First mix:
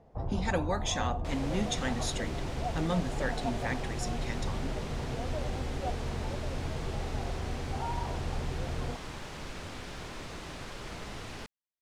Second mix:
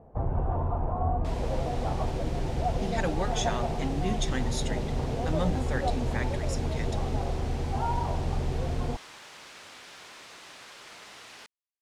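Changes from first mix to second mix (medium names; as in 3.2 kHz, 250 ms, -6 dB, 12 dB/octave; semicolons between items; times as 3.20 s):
speech: entry +2.50 s; first sound +6.0 dB; second sound: add high-pass 1.3 kHz 6 dB/octave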